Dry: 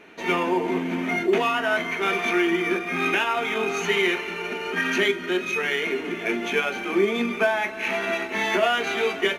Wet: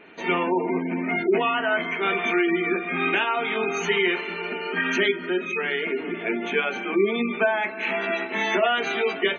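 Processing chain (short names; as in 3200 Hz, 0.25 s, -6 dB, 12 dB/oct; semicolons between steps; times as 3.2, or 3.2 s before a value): spectral gate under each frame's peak -25 dB strong; 5.16–6.55 high shelf 5400 Hz -12 dB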